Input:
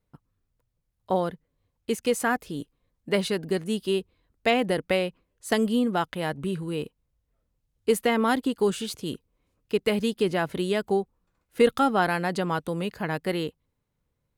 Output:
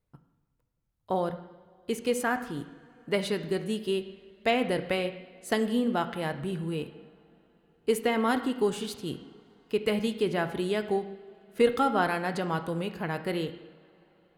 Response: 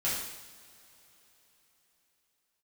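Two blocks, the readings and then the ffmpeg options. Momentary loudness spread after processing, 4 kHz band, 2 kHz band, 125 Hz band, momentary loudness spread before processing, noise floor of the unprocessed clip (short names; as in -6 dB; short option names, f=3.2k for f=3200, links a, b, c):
13 LU, -3.5 dB, -3.0 dB, -2.5 dB, 11 LU, -78 dBFS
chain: -filter_complex "[0:a]asplit=2[a][b];[1:a]atrim=start_sample=2205,lowpass=3.9k[c];[b][c]afir=irnorm=-1:irlink=0,volume=-13.5dB[d];[a][d]amix=inputs=2:normalize=0,volume=-4.5dB"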